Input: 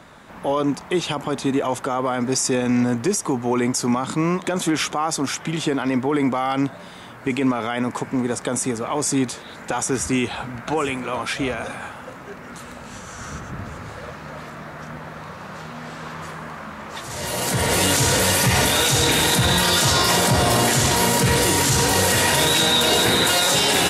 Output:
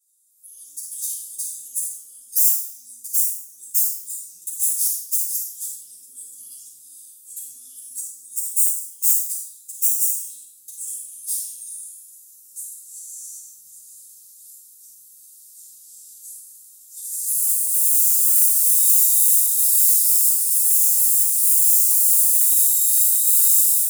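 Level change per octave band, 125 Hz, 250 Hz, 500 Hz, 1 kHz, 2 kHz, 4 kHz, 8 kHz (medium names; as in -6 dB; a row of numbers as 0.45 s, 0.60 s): under -40 dB, under -40 dB, under -40 dB, under -40 dB, under -40 dB, -17.5 dB, +5.0 dB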